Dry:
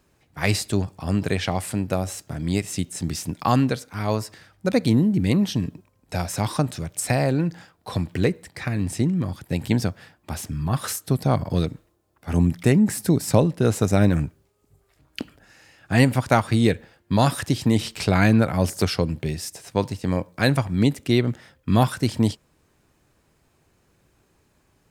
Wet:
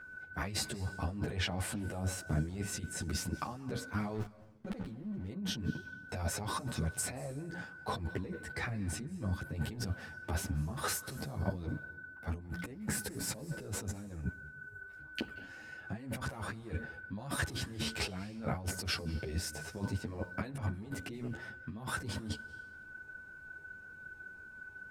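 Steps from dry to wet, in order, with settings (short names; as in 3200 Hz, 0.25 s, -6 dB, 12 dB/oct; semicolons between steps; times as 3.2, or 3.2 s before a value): high shelf 2000 Hz -9 dB; whine 1500 Hz -45 dBFS; 4.14–5.29 backlash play -27.5 dBFS; negative-ratio compressor -31 dBFS, ratio -1; on a send at -18 dB: reverb RT60 1.0 s, pre-delay 0.173 s; on the sum: ensemble effect; gain -4.5 dB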